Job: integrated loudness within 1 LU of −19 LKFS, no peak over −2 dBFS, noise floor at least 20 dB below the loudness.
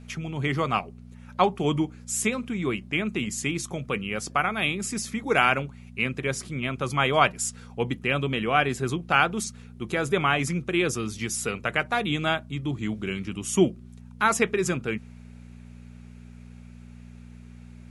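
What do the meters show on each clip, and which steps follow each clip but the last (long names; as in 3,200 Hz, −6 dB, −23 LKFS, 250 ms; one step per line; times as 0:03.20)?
mains hum 60 Hz; hum harmonics up to 240 Hz; level of the hum −42 dBFS; integrated loudness −26.0 LKFS; sample peak −5.0 dBFS; target loudness −19.0 LKFS
→ hum removal 60 Hz, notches 4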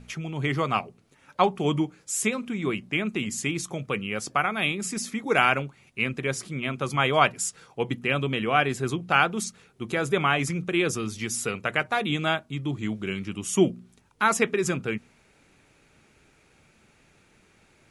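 mains hum none found; integrated loudness −26.5 LKFS; sample peak −5.0 dBFS; target loudness −19.0 LKFS
→ level +7.5 dB
brickwall limiter −2 dBFS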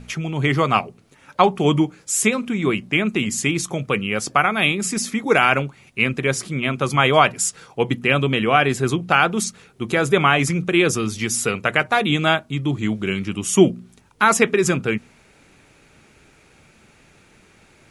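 integrated loudness −19.5 LKFS; sample peak −2.0 dBFS; background noise floor −54 dBFS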